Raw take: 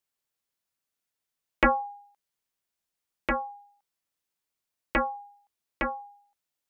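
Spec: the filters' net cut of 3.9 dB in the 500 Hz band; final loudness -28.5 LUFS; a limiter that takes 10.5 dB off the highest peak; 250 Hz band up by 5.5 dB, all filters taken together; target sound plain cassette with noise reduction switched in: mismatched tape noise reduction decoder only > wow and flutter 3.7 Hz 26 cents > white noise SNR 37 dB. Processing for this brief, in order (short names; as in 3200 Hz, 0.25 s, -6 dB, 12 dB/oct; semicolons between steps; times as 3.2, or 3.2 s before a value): bell 250 Hz +8 dB; bell 500 Hz -6.5 dB; limiter -19.5 dBFS; mismatched tape noise reduction decoder only; wow and flutter 3.7 Hz 26 cents; white noise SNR 37 dB; gain +5.5 dB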